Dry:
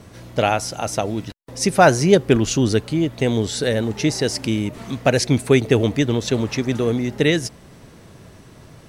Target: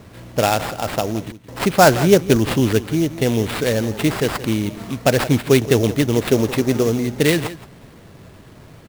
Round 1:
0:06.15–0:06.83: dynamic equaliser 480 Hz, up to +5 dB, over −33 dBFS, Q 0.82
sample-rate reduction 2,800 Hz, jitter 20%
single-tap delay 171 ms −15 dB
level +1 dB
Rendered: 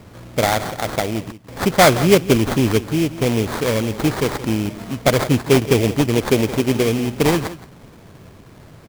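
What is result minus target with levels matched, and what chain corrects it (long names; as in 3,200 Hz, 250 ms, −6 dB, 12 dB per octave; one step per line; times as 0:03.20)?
sample-rate reduction: distortion +4 dB
0:06.15–0:06.83: dynamic equaliser 480 Hz, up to +5 dB, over −33 dBFS, Q 0.82
sample-rate reduction 6,200 Hz, jitter 20%
single-tap delay 171 ms −15 dB
level +1 dB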